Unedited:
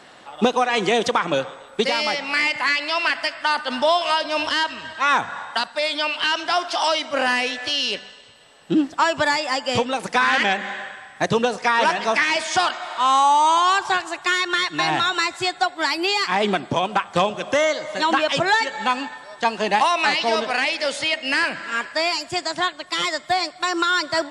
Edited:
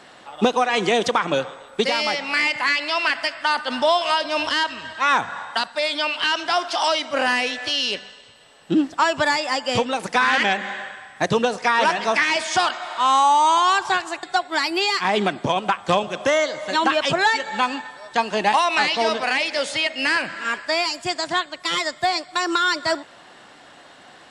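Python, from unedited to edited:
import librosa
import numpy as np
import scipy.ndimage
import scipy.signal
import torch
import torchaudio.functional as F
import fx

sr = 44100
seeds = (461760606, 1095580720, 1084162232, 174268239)

y = fx.edit(x, sr, fx.cut(start_s=14.23, length_s=1.27), tone=tone)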